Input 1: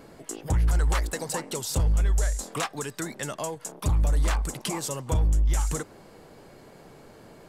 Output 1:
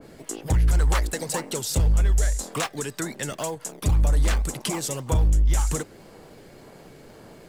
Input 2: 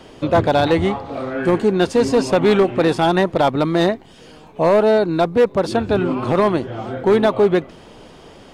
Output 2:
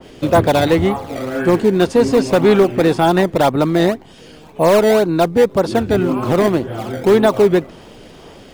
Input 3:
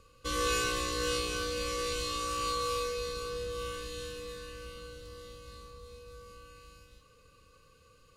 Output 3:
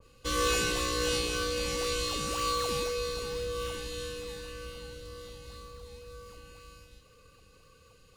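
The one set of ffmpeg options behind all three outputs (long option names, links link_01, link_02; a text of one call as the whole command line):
ffmpeg -i in.wav -filter_complex "[0:a]acrossover=split=660|1100[link_01][link_02][link_03];[link_02]acrusher=samples=19:mix=1:aa=0.000001:lfo=1:lforange=30.4:lforate=1.9[link_04];[link_01][link_04][link_03]amix=inputs=3:normalize=0,adynamicequalizer=threshold=0.0251:dfrequency=2000:dqfactor=0.7:tfrequency=2000:tqfactor=0.7:attack=5:release=100:ratio=0.375:range=2:mode=cutabove:tftype=highshelf,volume=3dB" out.wav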